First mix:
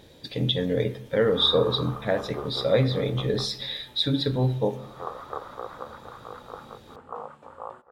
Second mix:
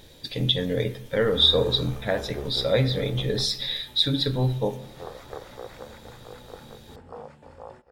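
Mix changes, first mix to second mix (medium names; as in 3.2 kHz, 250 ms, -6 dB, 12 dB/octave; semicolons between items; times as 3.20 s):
speech: add tilt EQ +2 dB/octave; first sound: remove resonant low-pass 1.2 kHz, resonance Q 4.8; master: remove high-pass 230 Hz 6 dB/octave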